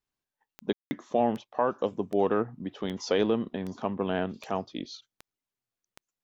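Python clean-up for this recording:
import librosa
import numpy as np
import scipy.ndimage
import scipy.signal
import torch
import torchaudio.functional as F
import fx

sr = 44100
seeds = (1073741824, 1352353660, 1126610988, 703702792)

y = fx.fix_declick_ar(x, sr, threshold=10.0)
y = fx.fix_ambience(y, sr, seeds[0], print_start_s=4.58, print_end_s=5.08, start_s=0.73, end_s=0.91)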